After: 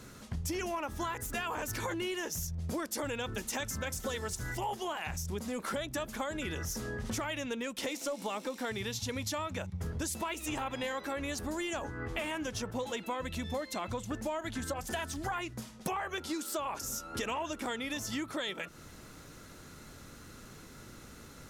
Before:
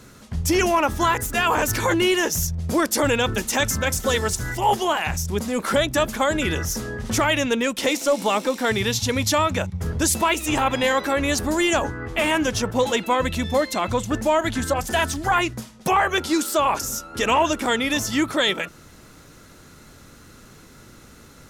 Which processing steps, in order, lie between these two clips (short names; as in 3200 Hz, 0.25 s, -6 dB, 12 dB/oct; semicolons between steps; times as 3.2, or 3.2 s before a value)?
compressor, threshold -30 dBFS, peak gain reduction 14 dB; gain -4 dB